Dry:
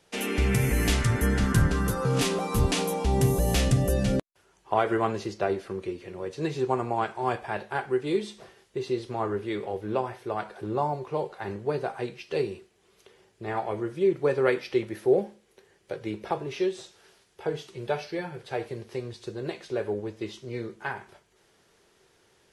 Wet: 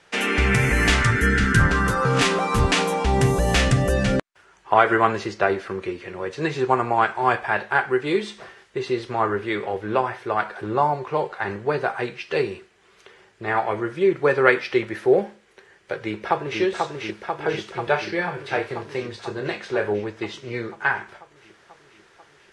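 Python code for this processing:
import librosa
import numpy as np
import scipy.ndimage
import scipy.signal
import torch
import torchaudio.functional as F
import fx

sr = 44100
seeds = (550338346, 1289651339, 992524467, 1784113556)

y = fx.spec_box(x, sr, start_s=1.11, length_s=0.49, low_hz=490.0, high_hz=1300.0, gain_db=-11)
y = fx.echo_throw(y, sr, start_s=15.96, length_s=0.65, ms=490, feedback_pct=75, wet_db=-3.5)
y = fx.doubler(y, sr, ms=29.0, db=-8, at=(17.84, 20.06))
y = scipy.signal.sosfilt(scipy.signal.butter(4, 9500.0, 'lowpass', fs=sr, output='sos'), y)
y = fx.peak_eq(y, sr, hz=1600.0, db=10.5, octaves=1.8)
y = y * 10.0 ** (3.0 / 20.0)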